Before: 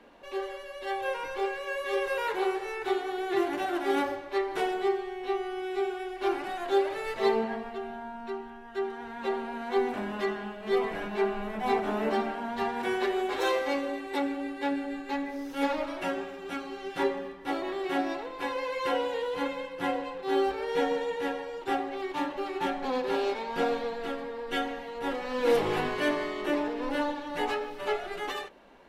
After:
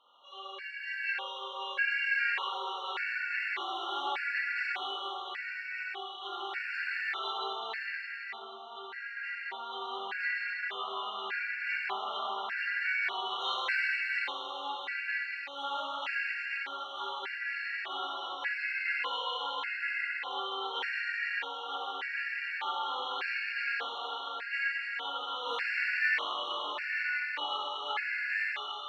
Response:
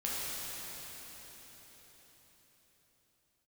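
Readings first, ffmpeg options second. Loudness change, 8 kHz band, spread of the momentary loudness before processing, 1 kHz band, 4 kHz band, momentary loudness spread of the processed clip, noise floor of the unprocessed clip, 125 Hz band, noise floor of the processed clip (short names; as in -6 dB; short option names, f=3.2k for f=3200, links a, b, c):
-2.5 dB, under -10 dB, 8 LU, -4.5 dB, +4.5 dB, 8 LU, -43 dBFS, under -30 dB, -44 dBFS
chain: -filter_complex "[0:a]asuperpass=centerf=2200:order=4:qfactor=0.9[a];[1:a]atrim=start_sample=2205[b];[a][b]afir=irnorm=-1:irlink=0,afftfilt=real='re*gt(sin(2*PI*0.84*pts/sr)*(1-2*mod(floor(b*sr/1024/1400),2)),0)':imag='im*gt(sin(2*PI*0.84*pts/sr)*(1-2*mod(floor(b*sr/1024/1400),2)),0)':win_size=1024:overlap=0.75,volume=3dB"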